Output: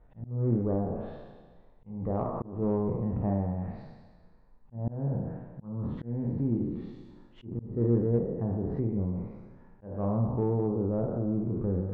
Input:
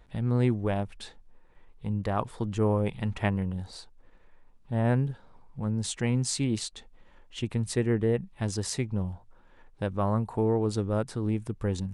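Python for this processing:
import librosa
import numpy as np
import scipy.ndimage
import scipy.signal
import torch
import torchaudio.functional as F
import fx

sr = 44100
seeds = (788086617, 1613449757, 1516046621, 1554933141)

p1 = fx.spec_trails(x, sr, decay_s=1.51)
p2 = scipy.signal.sosfilt(scipy.signal.butter(2, 1100.0, 'lowpass', fs=sr, output='sos'), p1)
p3 = p2 + fx.room_early_taps(p2, sr, ms=(34, 51), db=(-7.5, -9.5), dry=0)
p4 = fx.dynamic_eq(p3, sr, hz=170.0, q=0.7, threshold_db=-35.0, ratio=4.0, max_db=4)
p5 = fx.env_lowpass_down(p4, sr, base_hz=820.0, full_db=-21.5)
p6 = 10.0 ** (-19.5 / 20.0) * np.tanh(p5 / 10.0 ** (-19.5 / 20.0))
p7 = p5 + F.gain(torch.from_numpy(p6), -8.5).numpy()
p8 = fx.auto_swell(p7, sr, attack_ms=257.0)
y = F.gain(torch.from_numpy(p8), -7.0).numpy()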